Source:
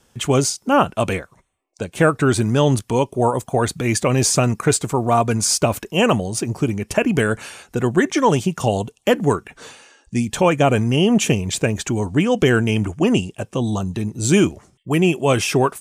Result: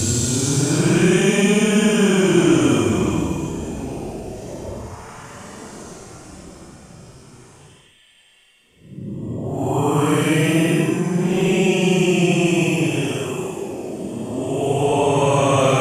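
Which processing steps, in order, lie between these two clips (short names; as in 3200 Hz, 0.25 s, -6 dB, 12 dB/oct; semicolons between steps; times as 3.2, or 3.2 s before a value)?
per-bin compression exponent 0.6; Paulstretch 15×, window 0.05 s, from 14.26; low shelf 61 Hz +8 dB; gain -5.5 dB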